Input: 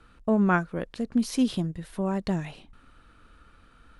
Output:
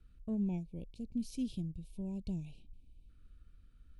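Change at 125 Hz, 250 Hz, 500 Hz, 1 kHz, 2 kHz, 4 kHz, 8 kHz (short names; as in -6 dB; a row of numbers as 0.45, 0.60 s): -10.0 dB, -12.0 dB, -19.5 dB, under -25 dB, under -30 dB, -17.0 dB, -15.5 dB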